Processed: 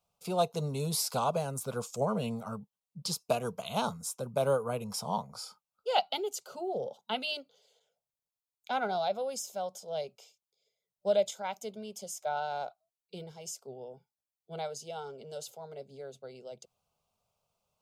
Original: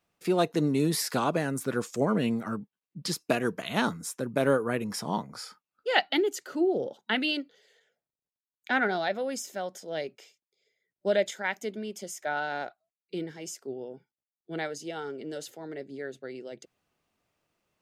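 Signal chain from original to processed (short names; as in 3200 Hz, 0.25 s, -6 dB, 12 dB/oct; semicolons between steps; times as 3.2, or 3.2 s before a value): fixed phaser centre 750 Hz, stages 4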